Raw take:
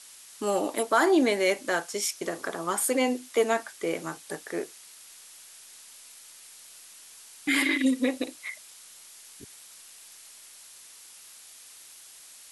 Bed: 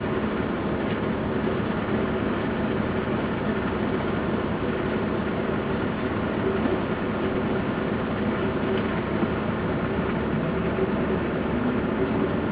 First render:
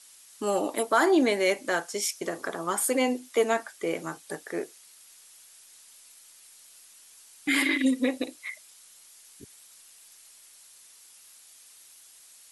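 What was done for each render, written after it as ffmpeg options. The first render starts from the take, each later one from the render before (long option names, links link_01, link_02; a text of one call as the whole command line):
ffmpeg -i in.wav -af "afftdn=noise_reduction=6:noise_floor=-50" out.wav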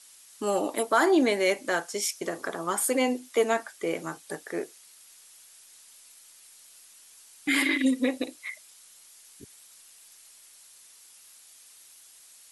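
ffmpeg -i in.wav -af anull out.wav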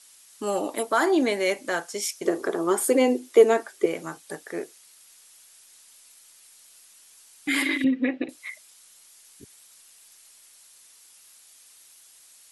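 ffmpeg -i in.wav -filter_complex "[0:a]asettb=1/sr,asplit=3[link_01][link_02][link_03];[link_01]atrim=end=2.254[link_04];[link_02]atrim=start=2.25:end=3.86,asetpts=PTS-STARTPTS,afade=type=in:duration=0.004:curve=qsin,afade=type=out:start_time=1.606:duration=0.004:curve=qsin,equalizer=frequency=380:width_type=o:width=0.77:gain=14[link_05];[link_03]atrim=start=3.856[link_06];[link_04][link_05]acrossfade=duration=0.004:curve1=hsin:curve2=qsin[link_07];[link_07][link_06]acrossfade=duration=0.004:curve1=qsin:curve2=hsin,asettb=1/sr,asplit=3[link_08][link_09][link_10];[link_08]atrim=end=7.844[link_11];[link_09]atrim=start=7.84:end=8.29,asetpts=PTS-STARTPTS,afade=type=in:duration=0.004:curve=qsin,afade=type=out:start_time=0.446:duration=0.004:curve=qsin,highpass=150,equalizer=frequency=170:width_type=q:width=4:gain=10,equalizer=frequency=350:width_type=q:width=4:gain=9,equalizer=frequency=510:width_type=q:width=4:gain=-4,equalizer=frequency=980:width_type=q:width=4:gain=-5,equalizer=frequency=1700:width_type=q:width=4:gain=6,equalizer=frequency=2600:width_type=q:width=4:gain=3,lowpass=frequency=2900:width=0.5412,lowpass=frequency=2900:width=1.3066[link_12];[link_10]atrim=start=8.286[link_13];[link_11][link_12]acrossfade=duration=0.004:curve1=hsin:curve2=qsin[link_14];[link_14][link_13]acrossfade=duration=0.004:curve1=qsin:curve2=hsin" out.wav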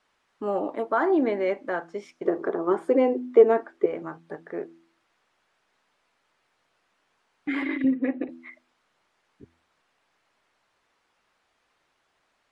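ffmpeg -i in.wav -af "lowpass=1400,bandreject=frequency=83.02:width_type=h:width=4,bandreject=frequency=166.04:width_type=h:width=4,bandreject=frequency=249.06:width_type=h:width=4,bandreject=frequency=332.08:width_type=h:width=4" out.wav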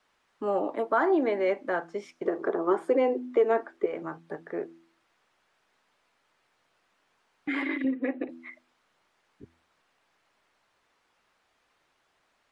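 ffmpeg -i in.wav -filter_complex "[0:a]acrossover=split=290|1200[link_01][link_02][link_03];[link_01]acompressor=threshold=-40dB:ratio=6[link_04];[link_02]alimiter=limit=-16dB:level=0:latency=1:release=197[link_05];[link_04][link_05][link_03]amix=inputs=3:normalize=0" out.wav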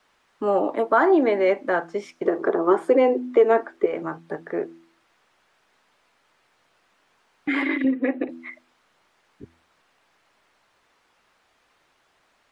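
ffmpeg -i in.wav -af "volume=6.5dB" out.wav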